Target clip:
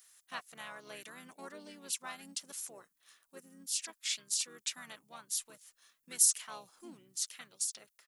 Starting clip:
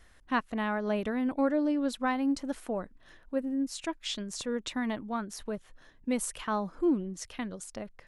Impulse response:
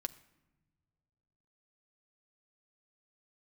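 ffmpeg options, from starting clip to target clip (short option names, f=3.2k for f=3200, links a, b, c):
-filter_complex "[0:a]crystalizer=i=1.5:c=0,asplit=3[a][b][c];[b]asetrate=29433,aresample=44100,atempo=1.49831,volume=-3dB[d];[c]asetrate=35002,aresample=44100,atempo=1.25992,volume=-7dB[e];[a][d][e]amix=inputs=3:normalize=0,aderivative"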